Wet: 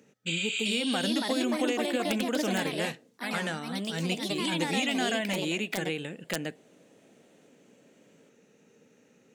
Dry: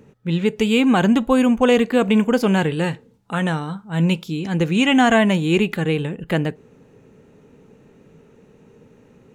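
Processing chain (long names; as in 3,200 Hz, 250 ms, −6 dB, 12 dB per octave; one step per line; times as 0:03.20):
high-pass filter 300 Hz 12 dB per octave
healed spectral selection 0:00.30–0:00.68, 1,300–8,200 Hz after
graphic EQ with 15 bands 400 Hz −7 dB, 1,000 Hz −11 dB, 6,300 Hz +6 dB
downward compressor 10 to 1, threshold −22 dBFS, peak gain reduction 8 dB
wrap-around overflow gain 13 dB
delay with pitch and tempo change per echo 429 ms, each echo +3 semitones, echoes 2
level −4 dB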